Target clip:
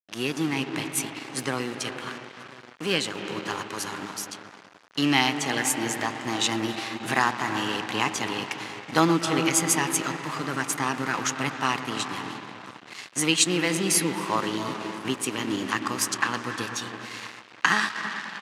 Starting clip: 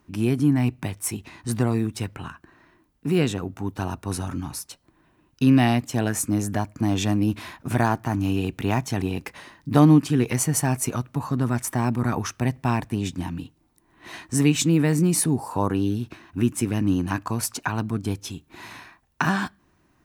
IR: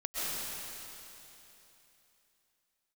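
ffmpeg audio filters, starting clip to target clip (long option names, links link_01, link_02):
-filter_complex "[0:a]asetrate=48000,aresample=44100,bandreject=frequency=700:width=13,asplit=2[link_01][link_02];[link_02]adelay=1031,lowpass=frequency=1300:poles=1,volume=-18.5dB,asplit=2[link_03][link_04];[link_04]adelay=1031,lowpass=frequency=1300:poles=1,volume=0.39,asplit=2[link_05][link_06];[link_06]adelay=1031,lowpass=frequency=1300:poles=1,volume=0.39[link_07];[link_01][link_03][link_05][link_07]amix=inputs=4:normalize=0,acrusher=bits=7:mix=0:aa=0.5,asplit=2[link_08][link_09];[1:a]atrim=start_sample=2205,lowpass=2300,adelay=118[link_10];[link_09][link_10]afir=irnorm=-1:irlink=0,volume=-10dB[link_11];[link_08][link_11]amix=inputs=2:normalize=0,aeval=exprs='sgn(val(0))*max(abs(val(0))-0.015,0)':channel_layout=same,highpass=160,lowpass=7500,tiltshelf=frequency=780:gain=-8.5"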